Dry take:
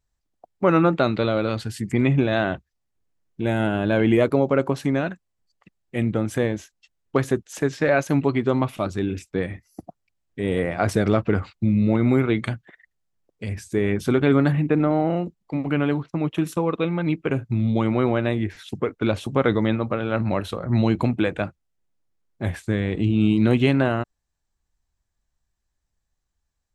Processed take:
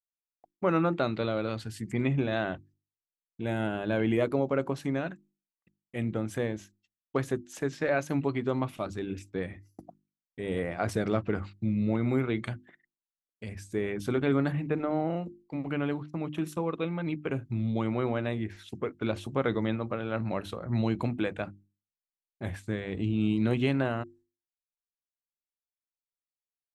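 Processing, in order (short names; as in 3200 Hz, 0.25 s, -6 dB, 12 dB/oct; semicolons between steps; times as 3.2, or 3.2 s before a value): expander -45 dBFS; notches 50/100/150/200/250/300/350 Hz; gain -8 dB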